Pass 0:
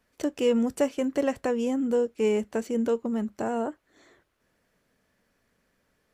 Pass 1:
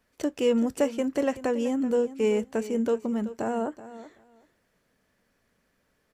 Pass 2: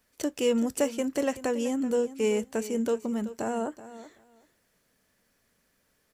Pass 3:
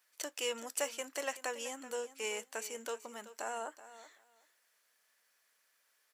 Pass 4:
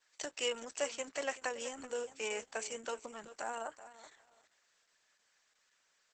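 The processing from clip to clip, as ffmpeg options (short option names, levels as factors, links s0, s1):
-af "aecho=1:1:379|758:0.178|0.0302"
-af "highshelf=f=4200:g=10.5,volume=0.794"
-af "highpass=930,volume=0.841"
-af "volume=1.26" -ar 48000 -c:a libopus -b:a 10k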